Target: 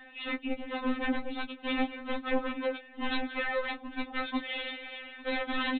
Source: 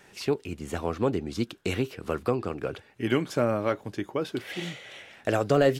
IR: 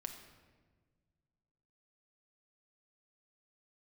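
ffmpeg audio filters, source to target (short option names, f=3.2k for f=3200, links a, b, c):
-filter_complex "[0:a]acrossover=split=600|2100[a][b][c];[b]asoftclip=type=tanh:threshold=-34dB[d];[a][d][c]amix=inputs=3:normalize=0,acontrast=37,aresample=8000,aeval=exprs='0.0668*(abs(mod(val(0)/0.0668+3,4)-2)-1)':c=same,aresample=44100,asplit=2[e][f];[f]adelay=15,volume=-8.5dB[g];[e][g]amix=inputs=2:normalize=0,aecho=1:1:849:0.0891,afftfilt=real='re*3.46*eq(mod(b,12),0)':imag='im*3.46*eq(mod(b,12),0)':win_size=2048:overlap=0.75"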